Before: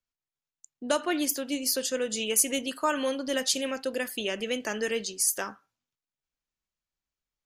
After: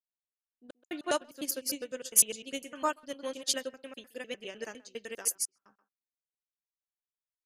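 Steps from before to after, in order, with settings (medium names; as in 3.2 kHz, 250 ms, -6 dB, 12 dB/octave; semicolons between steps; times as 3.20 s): slices played last to first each 101 ms, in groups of 3; speakerphone echo 130 ms, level -11 dB; upward expansion 2.5:1, over -37 dBFS; trim +3 dB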